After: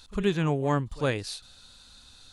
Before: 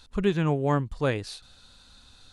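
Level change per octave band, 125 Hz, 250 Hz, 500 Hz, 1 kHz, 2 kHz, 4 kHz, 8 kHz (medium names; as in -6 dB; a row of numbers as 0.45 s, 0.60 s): -1.5 dB, -1.5 dB, -1.5 dB, -1.0 dB, 0.0 dB, +2.0 dB, +4.5 dB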